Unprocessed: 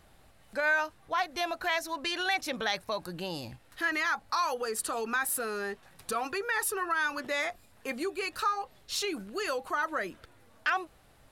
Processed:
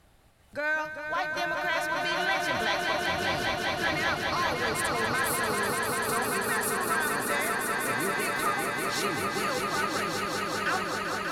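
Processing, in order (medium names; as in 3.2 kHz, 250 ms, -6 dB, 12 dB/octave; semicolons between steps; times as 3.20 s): octave divider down 1 oct, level -2 dB; Chebyshev shaper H 5 -40 dB, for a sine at -16 dBFS; echo with a slow build-up 196 ms, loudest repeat 5, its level -5 dB; trim -2 dB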